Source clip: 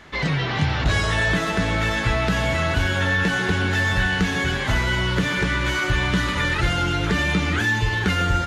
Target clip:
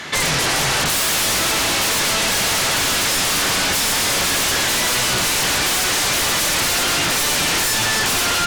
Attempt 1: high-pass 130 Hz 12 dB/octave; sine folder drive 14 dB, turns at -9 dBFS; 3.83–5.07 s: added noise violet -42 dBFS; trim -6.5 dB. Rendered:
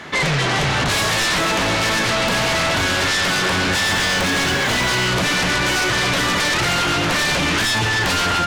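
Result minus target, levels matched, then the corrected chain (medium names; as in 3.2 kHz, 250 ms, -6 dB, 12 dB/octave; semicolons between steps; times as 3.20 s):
2 kHz band +3.5 dB
high-pass 130 Hz 12 dB/octave; treble shelf 2.4 kHz +12 dB; sine folder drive 14 dB, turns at -9 dBFS; 3.83–5.07 s: added noise violet -42 dBFS; trim -6.5 dB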